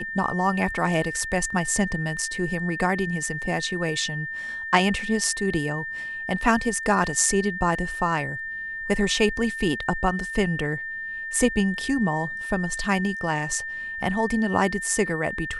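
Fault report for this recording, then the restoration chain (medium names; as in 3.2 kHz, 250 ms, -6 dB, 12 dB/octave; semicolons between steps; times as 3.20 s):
whine 1.8 kHz -30 dBFS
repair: band-stop 1.8 kHz, Q 30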